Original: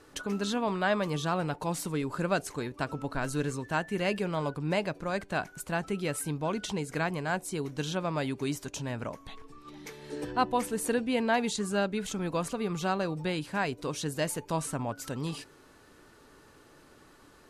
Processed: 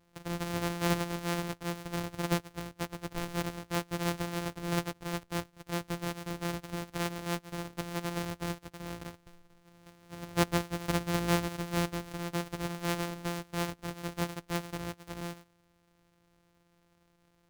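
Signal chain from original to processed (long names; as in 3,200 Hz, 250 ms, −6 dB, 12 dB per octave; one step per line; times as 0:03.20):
samples sorted by size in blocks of 256 samples
expander for the loud parts 1.5 to 1, over −46 dBFS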